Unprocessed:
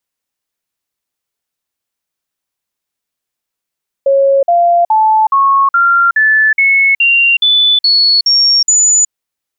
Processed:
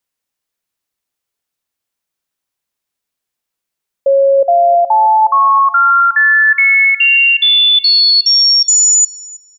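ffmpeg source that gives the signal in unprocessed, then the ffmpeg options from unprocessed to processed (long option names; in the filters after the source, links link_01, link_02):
-f lavfi -i "aevalsrc='0.501*clip(min(mod(t,0.42),0.37-mod(t,0.42))/0.005,0,1)*sin(2*PI*549*pow(2,floor(t/0.42)/3)*mod(t,0.42))':duration=5.04:sample_rate=44100"
-filter_complex "[0:a]asplit=2[link_01][link_02];[link_02]adelay=319,lowpass=frequency=3500:poles=1,volume=-15dB,asplit=2[link_03][link_04];[link_04]adelay=319,lowpass=frequency=3500:poles=1,volume=0.37,asplit=2[link_05][link_06];[link_06]adelay=319,lowpass=frequency=3500:poles=1,volume=0.37[link_07];[link_01][link_03][link_05][link_07]amix=inputs=4:normalize=0"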